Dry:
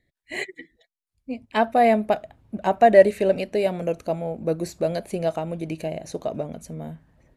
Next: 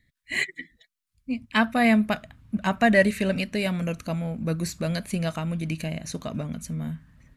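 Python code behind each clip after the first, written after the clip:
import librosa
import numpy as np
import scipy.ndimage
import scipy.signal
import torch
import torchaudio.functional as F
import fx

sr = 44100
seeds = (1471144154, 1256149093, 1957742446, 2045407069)

y = fx.band_shelf(x, sr, hz=530.0, db=-13.5, octaves=1.7)
y = F.gain(torch.from_numpy(y), 5.0).numpy()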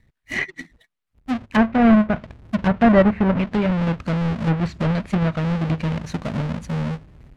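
y = fx.halfwave_hold(x, sr)
y = fx.env_lowpass_down(y, sr, base_hz=1700.0, full_db=-16.0)
y = fx.bass_treble(y, sr, bass_db=4, treble_db=-9)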